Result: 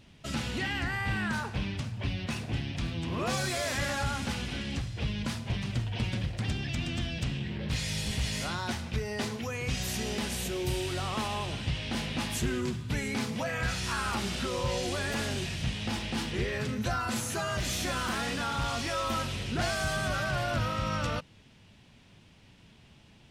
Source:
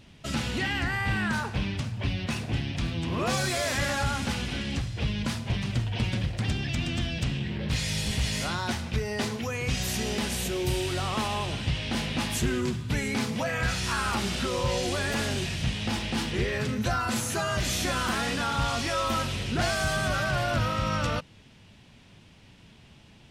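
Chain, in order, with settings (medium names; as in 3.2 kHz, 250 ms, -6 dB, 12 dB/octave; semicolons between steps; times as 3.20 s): 17.28–19.07 s: hard clipper -22 dBFS, distortion -31 dB; trim -3.5 dB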